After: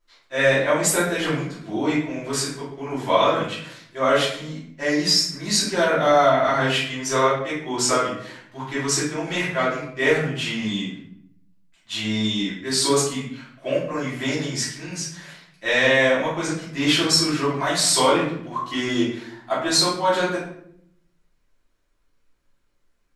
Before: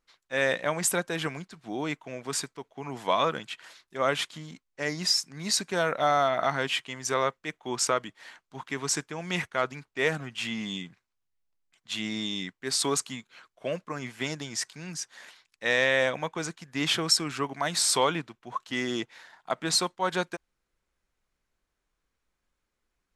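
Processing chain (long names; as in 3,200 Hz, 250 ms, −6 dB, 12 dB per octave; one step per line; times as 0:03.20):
rectangular room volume 130 cubic metres, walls mixed, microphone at 2.9 metres
level −3.5 dB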